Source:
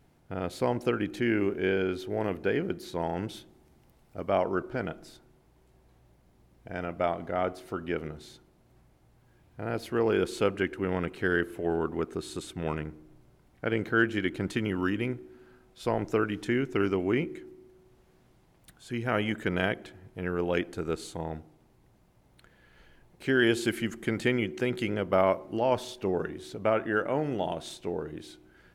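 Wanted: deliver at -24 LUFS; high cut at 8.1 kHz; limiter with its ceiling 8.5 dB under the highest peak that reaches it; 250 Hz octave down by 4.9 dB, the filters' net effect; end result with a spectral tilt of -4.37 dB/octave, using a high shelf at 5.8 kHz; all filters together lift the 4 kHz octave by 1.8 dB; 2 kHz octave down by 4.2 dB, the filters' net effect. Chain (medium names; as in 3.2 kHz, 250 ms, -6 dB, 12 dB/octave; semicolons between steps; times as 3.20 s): low-pass 8.1 kHz; peaking EQ 250 Hz -7 dB; peaking EQ 2 kHz -6.5 dB; peaking EQ 4 kHz +8.5 dB; treble shelf 5.8 kHz -8.5 dB; trim +11 dB; peak limiter -11 dBFS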